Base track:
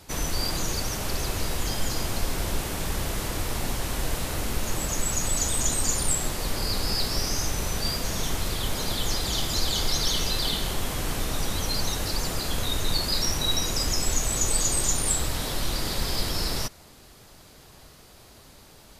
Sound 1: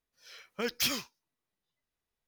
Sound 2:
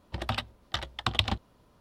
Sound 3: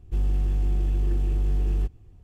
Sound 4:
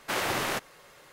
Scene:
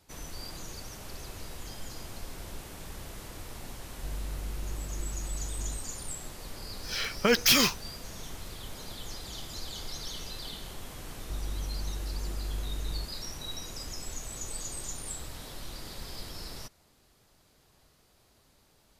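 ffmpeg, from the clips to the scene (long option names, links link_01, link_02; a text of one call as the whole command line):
ffmpeg -i bed.wav -i cue0.wav -i cue1.wav -i cue2.wav -filter_complex "[3:a]asplit=2[link_01][link_02];[0:a]volume=-14dB[link_03];[1:a]alimiter=level_in=30dB:limit=-1dB:release=50:level=0:latency=1[link_04];[link_02]acompressor=threshold=-26dB:ratio=6:attack=3.2:release=140:knee=1:detection=peak[link_05];[link_01]atrim=end=2.23,asetpts=PTS-STARTPTS,volume=-13.5dB,afade=type=in:duration=0.004:curve=hsin,afade=type=out:start_time=2.226:duration=0.004:curve=hsin,adelay=3910[link_06];[link_04]atrim=end=2.27,asetpts=PTS-STARTPTS,volume=-12dB,afade=type=in:duration=0.004:curve=hsin,afade=type=out:start_time=2.266:duration=0.004:curve=hsin,adelay=293706S[link_07];[link_05]atrim=end=2.23,asetpts=PTS-STARTPTS,volume=-6dB,afade=type=in:duration=0.004:curve=hsin,afade=type=out:start_time=2.226:duration=0.004:curve=hsin,adelay=11180[link_08];[link_03][link_06][link_07][link_08]amix=inputs=4:normalize=0" out.wav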